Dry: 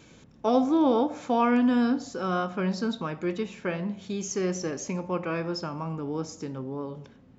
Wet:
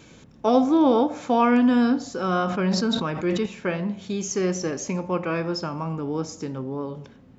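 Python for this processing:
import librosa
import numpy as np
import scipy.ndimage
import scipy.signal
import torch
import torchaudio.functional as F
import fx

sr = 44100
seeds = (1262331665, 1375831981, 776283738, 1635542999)

y = fx.sustainer(x, sr, db_per_s=38.0, at=(2.28, 3.46))
y = y * librosa.db_to_amplitude(4.0)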